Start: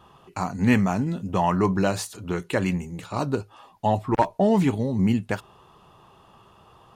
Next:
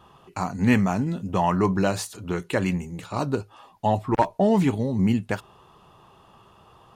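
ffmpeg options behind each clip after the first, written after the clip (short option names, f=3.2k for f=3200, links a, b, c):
-af anull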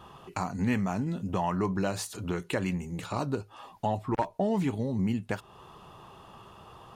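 -af "acompressor=threshold=-37dB:ratio=2,volume=3dB"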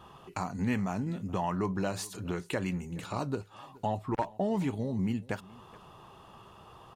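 -af "aecho=1:1:423:0.075,volume=-2.5dB"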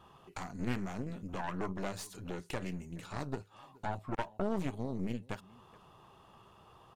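-af "aeval=exprs='0.141*(cos(1*acos(clip(val(0)/0.141,-1,1)))-cos(1*PI/2))+0.0447*(cos(4*acos(clip(val(0)/0.141,-1,1)))-cos(4*PI/2))':c=same,volume=-6.5dB"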